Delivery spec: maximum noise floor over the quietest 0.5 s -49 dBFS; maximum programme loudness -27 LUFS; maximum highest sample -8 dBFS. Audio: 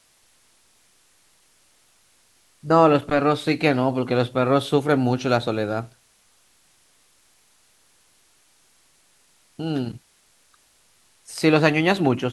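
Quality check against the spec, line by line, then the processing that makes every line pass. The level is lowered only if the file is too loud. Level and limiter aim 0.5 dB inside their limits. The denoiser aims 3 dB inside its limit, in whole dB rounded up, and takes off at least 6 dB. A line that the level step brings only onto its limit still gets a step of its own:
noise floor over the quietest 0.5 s -60 dBFS: pass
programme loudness -21.0 LUFS: fail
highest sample -2.0 dBFS: fail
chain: trim -6.5 dB

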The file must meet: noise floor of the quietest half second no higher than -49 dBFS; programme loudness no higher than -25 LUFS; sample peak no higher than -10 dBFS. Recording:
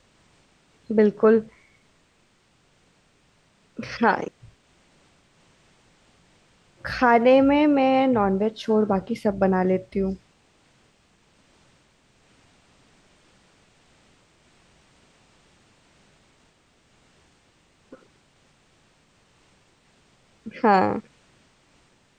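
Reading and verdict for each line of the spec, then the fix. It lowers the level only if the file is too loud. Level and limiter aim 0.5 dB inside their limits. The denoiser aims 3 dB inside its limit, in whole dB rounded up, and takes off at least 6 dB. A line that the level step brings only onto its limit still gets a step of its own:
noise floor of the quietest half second -63 dBFS: pass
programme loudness -21.0 LUFS: fail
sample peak -6.0 dBFS: fail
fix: trim -4.5 dB

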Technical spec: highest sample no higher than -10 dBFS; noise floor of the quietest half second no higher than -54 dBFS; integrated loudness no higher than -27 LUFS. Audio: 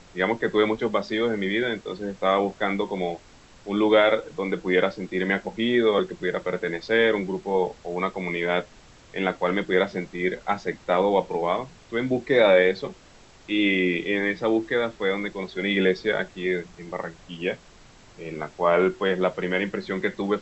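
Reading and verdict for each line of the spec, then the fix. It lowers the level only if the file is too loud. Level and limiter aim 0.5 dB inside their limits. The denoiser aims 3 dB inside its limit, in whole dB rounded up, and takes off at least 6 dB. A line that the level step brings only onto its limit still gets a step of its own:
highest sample -6.5 dBFS: fail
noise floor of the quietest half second -51 dBFS: fail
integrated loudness -24.5 LUFS: fail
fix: noise reduction 6 dB, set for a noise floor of -51 dBFS; trim -3 dB; peak limiter -10.5 dBFS

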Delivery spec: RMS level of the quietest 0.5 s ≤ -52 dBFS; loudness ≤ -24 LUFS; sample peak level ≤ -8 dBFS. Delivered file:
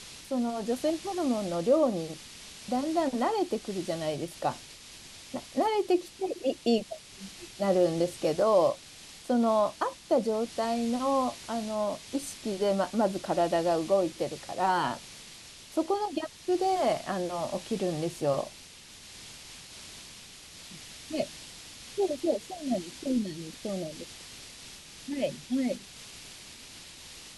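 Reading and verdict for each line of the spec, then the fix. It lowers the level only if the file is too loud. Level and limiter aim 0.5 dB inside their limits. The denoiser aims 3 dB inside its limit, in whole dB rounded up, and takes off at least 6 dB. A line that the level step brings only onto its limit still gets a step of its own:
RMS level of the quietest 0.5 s -50 dBFS: fail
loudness -30.0 LUFS: pass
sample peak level -13.5 dBFS: pass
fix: noise reduction 6 dB, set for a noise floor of -50 dBFS

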